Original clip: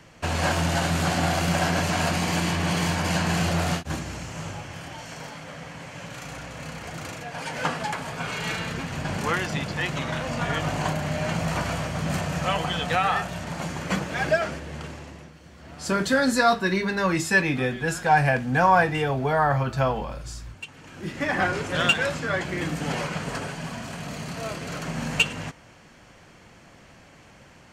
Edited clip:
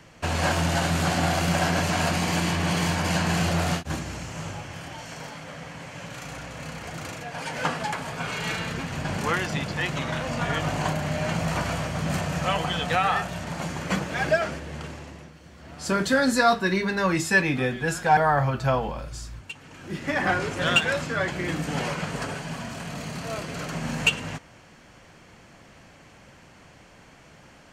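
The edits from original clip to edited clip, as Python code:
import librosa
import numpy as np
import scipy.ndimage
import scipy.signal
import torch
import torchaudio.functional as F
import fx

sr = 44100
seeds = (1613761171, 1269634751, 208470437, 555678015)

y = fx.edit(x, sr, fx.cut(start_s=18.17, length_s=1.13), tone=tone)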